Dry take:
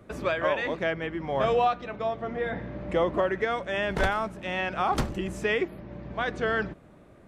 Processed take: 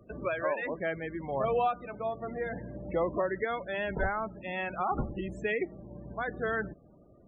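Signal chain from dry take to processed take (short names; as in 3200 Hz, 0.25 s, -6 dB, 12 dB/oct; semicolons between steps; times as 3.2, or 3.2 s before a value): loudest bins only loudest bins 32; gain -4.5 dB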